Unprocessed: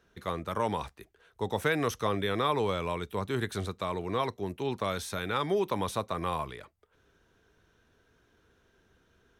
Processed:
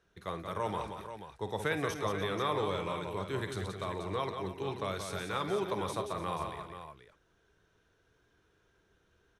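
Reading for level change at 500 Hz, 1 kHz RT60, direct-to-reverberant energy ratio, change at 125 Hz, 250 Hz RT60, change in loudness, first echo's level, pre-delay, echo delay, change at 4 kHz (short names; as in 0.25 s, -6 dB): -3.5 dB, none, none, -3.5 dB, none, -4.0 dB, -12.0 dB, none, 52 ms, -3.5 dB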